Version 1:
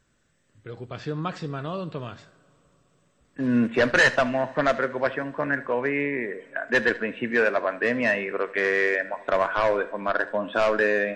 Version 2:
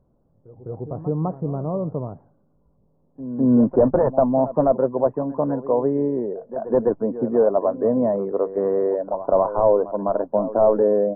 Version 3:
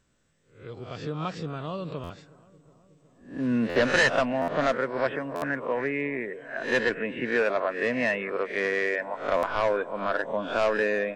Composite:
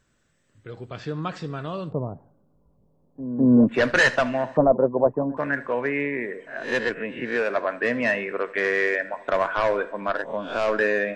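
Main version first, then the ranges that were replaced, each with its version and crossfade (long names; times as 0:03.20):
1
0:01.90–0:03.70: punch in from 2, crossfade 0.06 s
0:04.57–0:05.37: punch in from 2
0:06.47–0:07.50: punch in from 3
0:10.15–0:10.68: punch in from 3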